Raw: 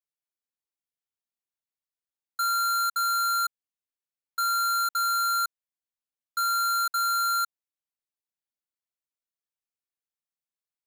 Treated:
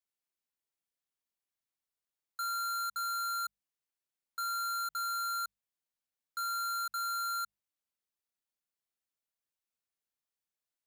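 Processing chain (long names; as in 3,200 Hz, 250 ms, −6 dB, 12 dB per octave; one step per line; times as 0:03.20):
mains-hum notches 50/100/150/200 Hz
brickwall limiter −34.5 dBFS, peak gain reduction 9.5 dB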